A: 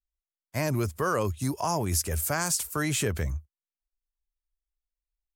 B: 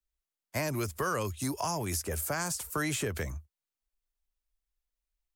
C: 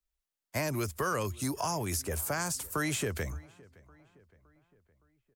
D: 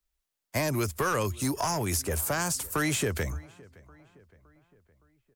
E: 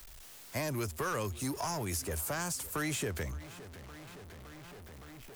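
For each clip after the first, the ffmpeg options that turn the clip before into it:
ffmpeg -i in.wav -filter_complex "[0:a]acrossover=split=84|250|1500[link_01][link_02][link_03][link_04];[link_01]acompressor=threshold=-46dB:ratio=4[link_05];[link_02]acompressor=threshold=-44dB:ratio=4[link_06];[link_03]acompressor=threshold=-35dB:ratio=4[link_07];[link_04]acompressor=threshold=-36dB:ratio=4[link_08];[link_05][link_06][link_07][link_08]amix=inputs=4:normalize=0,volume=2dB" out.wav
ffmpeg -i in.wav -filter_complex "[0:a]asplit=2[link_01][link_02];[link_02]adelay=565,lowpass=frequency=2700:poles=1,volume=-23dB,asplit=2[link_03][link_04];[link_04]adelay=565,lowpass=frequency=2700:poles=1,volume=0.53,asplit=2[link_05][link_06];[link_06]adelay=565,lowpass=frequency=2700:poles=1,volume=0.53,asplit=2[link_07][link_08];[link_08]adelay=565,lowpass=frequency=2700:poles=1,volume=0.53[link_09];[link_01][link_03][link_05][link_07][link_09]amix=inputs=5:normalize=0" out.wav
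ffmpeg -i in.wav -af "aeval=exprs='clip(val(0),-1,0.0422)':channel_layout=same,volume=4.5dB" out.wav
ffmpeg -i in.wav -af "aeval=exprs='val(0)+0.5*0.015*sgn(val(0))':channel_layout=same,volume=-8dB" out.wav

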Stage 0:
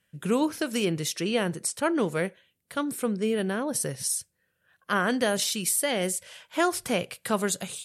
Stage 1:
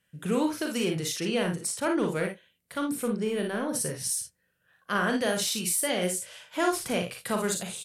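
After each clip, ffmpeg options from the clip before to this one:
ffmpeg -i in.wav -filter_complex "[0:a]asplit=2[link_01][link_02];[link_02]asoftclip=type=tanh:threshold=-26dB,volume=-7dB[link_03];[link_01][link_03]amix=inputs=2:normalize=0,aecho=1:1:39|56|80:0.447|0.501|0.168,volume=-5dB" out.wav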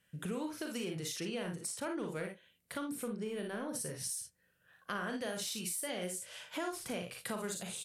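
ffmpeg -i in.wav -af "acompressor=threshold=-40dB:ratio=3" out.wav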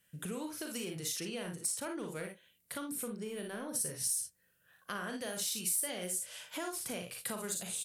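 ffmpeg -i in.wav -af "crystalizer=i=1.5:c=0,volume=-2dB" out.wav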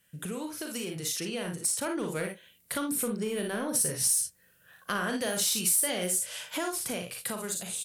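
ffmpeg -i in.wav -filter_complex "[0:a]dynaudnorm=framelen=300:gausssize=11:maxgain=5.5dB,asplit=2[link_01][link_02];[link_02]volume=29.5dB,asoftclip=hard,volume=-29.5dB,volume=-5dB[link_03];[link_01][link_03]amix=inputs=2:normalize=0" out.wav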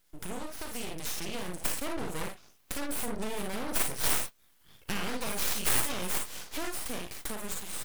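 ffmpeg -i in.wav -af "aeval=exprs='0.188*(cos(1*acos(clip(val(0)/0.188,-1,1)))-cos(1*PI/2))+0.0596*(cos(3*acos(clip(val(0)/0.188,-1,1)))-cos(3*PI/2))+0.0188*(cos(4*acos(clip(val(0)/0.188,-1,1)))-cos(4*PI/2))+0.0188*(cos(7*acos(clip(val(0)/0.188,-1,1)))-cos(7*PI/2))+0.00841*(cos(8*acos(clip(val(0)/0.188,-1,1)))-cos(8*PI/2))':channel_layout=same,aeval=exprs='abs(val(0))':channel_layout=same,volume=4.5dB" out.wav

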